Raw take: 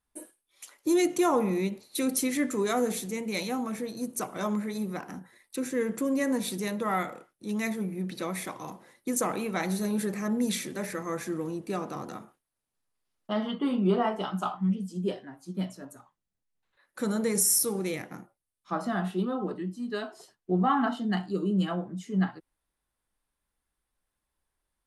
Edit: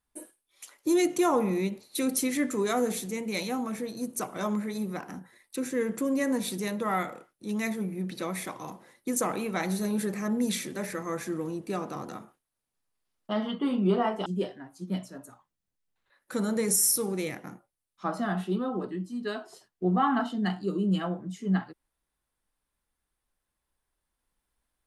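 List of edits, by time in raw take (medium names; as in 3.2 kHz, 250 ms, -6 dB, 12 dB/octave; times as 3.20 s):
14.26–14.93 s: delete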